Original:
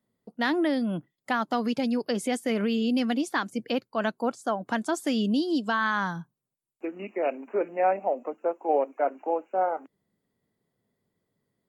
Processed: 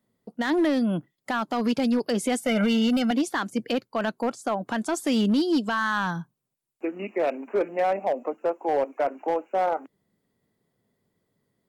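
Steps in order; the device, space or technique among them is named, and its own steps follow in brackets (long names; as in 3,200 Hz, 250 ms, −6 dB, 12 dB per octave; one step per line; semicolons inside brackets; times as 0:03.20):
limiter into clipper (brickwall limiter −18.5 dBFS, peak gain reduction 7 dB; hard clipping −21.5 dBFS, distortion −21 dB)
0:02.37–0:03.11: comb filter 1.4 ms, depth 96%
level +4 dB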